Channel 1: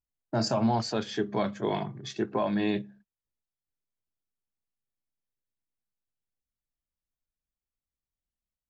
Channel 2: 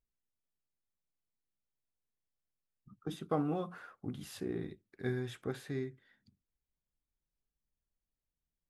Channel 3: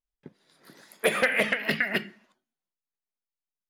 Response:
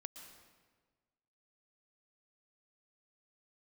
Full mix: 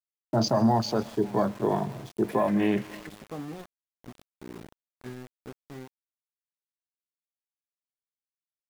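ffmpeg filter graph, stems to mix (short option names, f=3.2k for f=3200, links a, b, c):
-filter_complex "[0:a]afwtdn=0.0141,volume=1.5dB,asplit=3[a][b][c];[b]volume=-6dB[d];[c]volume=-21.5dB[e];[1:a]adynamicequalizer=threshold=0.00447:dfrequency=220:dqfactor=1.1:tfrequency=220:tqfactor=1.1:attack=5:release=100:ratio=0.375:range=3:mode=boostabove:tftype=bell,volume=-8dB,asplit=3[f][g][h];[g]volume=-23.5dB[i];[2:a]acompressor=threshold=-29dB:ratio=6,adelay=1250,volume=-12.5dB[j];[h]apad=whole_len=218021[k];[j][k]sidechaincompress=threshold=-57dB:ratio=8:attack=16:release=775[l];[3:a]atrim=start_sample=2205[m];[d][i]amix=inputs=2:normalize=0[n];[n][m]afir=irnorm=-1:irlink=0[o];[e]aecho=0:1:546:1[p];[a][f][l][o][p]amix=inputs=5:normalize=0,aeval=exprs='val(0)*gte(abs(val(0)),0.00841)':c=same"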